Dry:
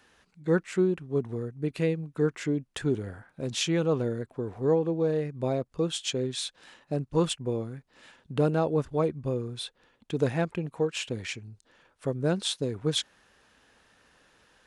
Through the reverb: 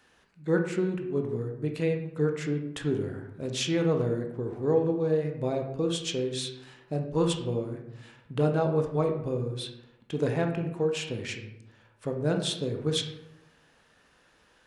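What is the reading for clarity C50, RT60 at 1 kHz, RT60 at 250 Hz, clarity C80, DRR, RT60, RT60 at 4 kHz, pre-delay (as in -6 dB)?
7.0 dB, 0.85 s, 1.0 s, 10.0 dB, 3.5 dB, 0.90 s, 0.50 s, 16 ms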